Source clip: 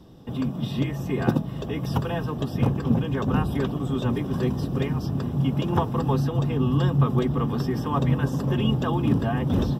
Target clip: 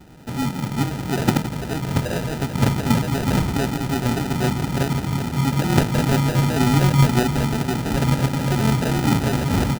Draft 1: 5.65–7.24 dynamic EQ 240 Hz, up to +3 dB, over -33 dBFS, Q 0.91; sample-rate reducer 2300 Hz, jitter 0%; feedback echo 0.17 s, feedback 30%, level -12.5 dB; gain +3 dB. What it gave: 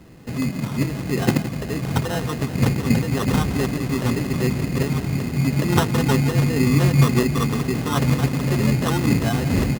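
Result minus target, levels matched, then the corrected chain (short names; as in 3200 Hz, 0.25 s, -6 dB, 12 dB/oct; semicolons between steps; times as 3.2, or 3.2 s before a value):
sample-rate reducer: distortion -6 dB
5.65–7.24 dynamic EQ 240 Hz, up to +3 dB, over -33 dBFS, Q 0.91; sample-rate reducer 1100 Hz, jitter 0%; feedback echo 0.17 s, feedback 30%, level -12.5 dB; gain +3 dB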